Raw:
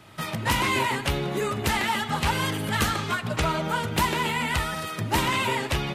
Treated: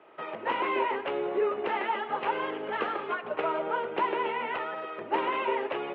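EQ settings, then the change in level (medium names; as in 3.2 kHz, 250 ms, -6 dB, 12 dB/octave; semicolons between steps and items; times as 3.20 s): Chebyshev band-pass 410–2900 Hz, order 3; tilt EQ -4.5 dB/octave; -2.5 dB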